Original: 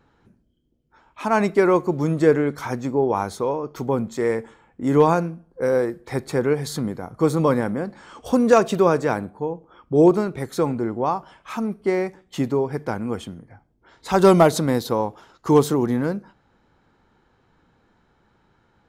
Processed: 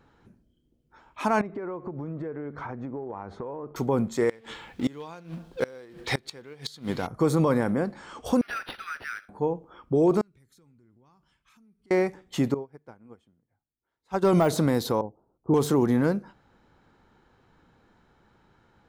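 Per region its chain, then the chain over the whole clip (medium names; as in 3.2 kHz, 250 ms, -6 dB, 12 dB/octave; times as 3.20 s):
1.41–3.76 s: low-pass 1.6 kHz + compression 12:1, threshold -31 dBFS
4.29–7.07 s: companding laws mixed up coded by mu + peaking EQ 3.5 kHz +14.5 dB 1.6 oct + inverted gate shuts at -12 dBFS, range -26 dB
8.41–9.29 s: steep high-pass 1.3 kHz 96 dB/octave + compression 3:1, threshold -29 dBFS + decimation joined by straight lines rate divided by 6×
10.21–11.91 s: amplifier tone stack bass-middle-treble 6-0-2 + compression, threshold -58 dBFS
12.54–14.33 s: treble shelf 4 kHz -6.5 dB + upward expansion 2.5:1, over -30 dBFS
15.01–15.54 s: self-modulated delay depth 0.12 ms + Bessel low-pass 530 Hz, order 6 + upward expansion, over -37 dBFS
whole clip: de-esser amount 55%; peak limiter -13.5 dBFS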